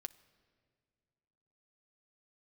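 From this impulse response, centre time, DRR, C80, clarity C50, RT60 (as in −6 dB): 3 ms, 10.5 dB, 20.5 dB, 19.0 dB, non-exponential decay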